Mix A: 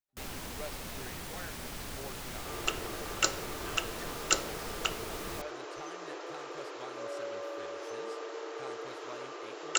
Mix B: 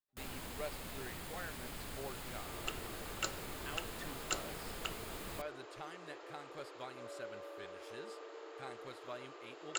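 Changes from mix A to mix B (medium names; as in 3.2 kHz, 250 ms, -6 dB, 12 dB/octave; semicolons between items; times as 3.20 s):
first sound -4.5 dB; second sound -9.5 dB; master: add peaking EQ 5.8 kHz -9 dB 0.24 oct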